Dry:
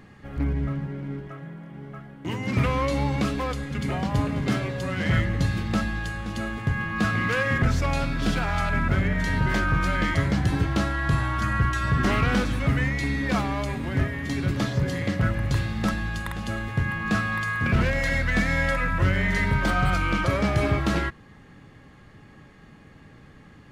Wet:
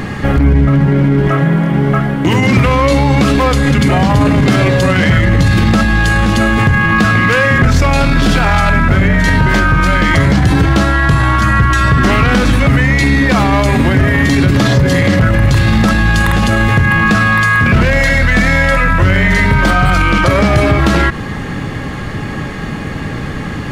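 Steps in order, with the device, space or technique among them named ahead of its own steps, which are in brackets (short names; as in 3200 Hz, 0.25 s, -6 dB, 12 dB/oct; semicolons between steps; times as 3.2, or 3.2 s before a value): loud club master (compressor 3:1, threshold -25 dBFS, peak gain reduction 6.5 dB; hard clip -19.5 dBFS, distortion -31 dB; maximiser +30.5 dB); gain -2 dB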